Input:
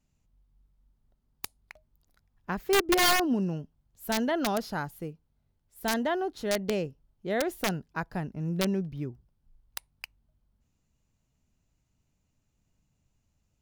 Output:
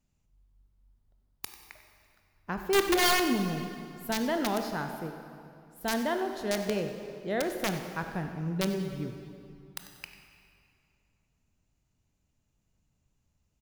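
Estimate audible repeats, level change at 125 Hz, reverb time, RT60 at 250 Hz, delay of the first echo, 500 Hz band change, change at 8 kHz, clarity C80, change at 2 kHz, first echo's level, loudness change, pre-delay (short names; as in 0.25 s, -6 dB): 1, -1.0 dB, 2.5 s, 2.6 s, 94 ms, -0.5 dB, -1.0 dB, 7.0 dB, -1.0 dB, -14.5 dB, -1.0 dB, 20 ms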